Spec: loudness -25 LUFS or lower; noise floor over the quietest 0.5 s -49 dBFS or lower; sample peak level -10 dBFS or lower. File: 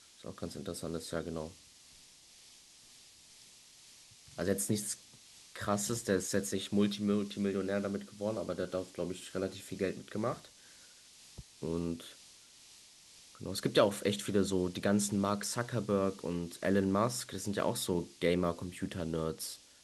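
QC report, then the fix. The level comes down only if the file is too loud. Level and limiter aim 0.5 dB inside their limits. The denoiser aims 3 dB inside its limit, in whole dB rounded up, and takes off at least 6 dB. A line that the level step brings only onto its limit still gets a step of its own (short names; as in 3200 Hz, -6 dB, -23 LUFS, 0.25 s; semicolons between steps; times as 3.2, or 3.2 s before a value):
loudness -35.0 LUFS: OK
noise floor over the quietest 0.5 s -59 dBFS: OK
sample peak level -13.5 dBFS: OK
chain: none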